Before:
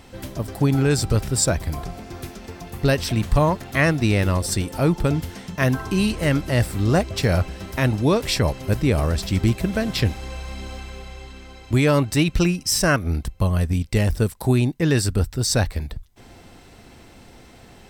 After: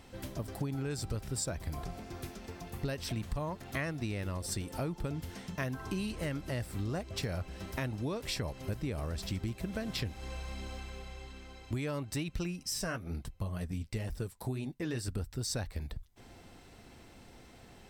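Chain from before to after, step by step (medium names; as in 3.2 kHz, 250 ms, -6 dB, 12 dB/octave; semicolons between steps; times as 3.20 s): 12.65–15.08 s: flange 2 Hz, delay 4 ms, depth 7 ms, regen -34%; compression 6:1, threshold -24 dBFS, peak gain reduction 11 dB; trim -8.5 dB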